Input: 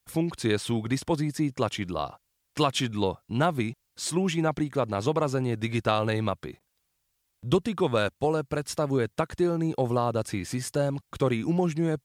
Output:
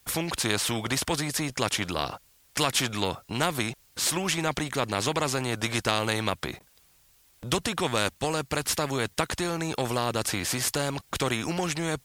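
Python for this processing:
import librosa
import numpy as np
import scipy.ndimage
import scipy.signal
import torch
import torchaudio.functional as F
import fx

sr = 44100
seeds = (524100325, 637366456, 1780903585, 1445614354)

y = fx.spectral_comp(x, sr, ratio=2.0)
y = y * 10.0 ** (2.5 / 20.0)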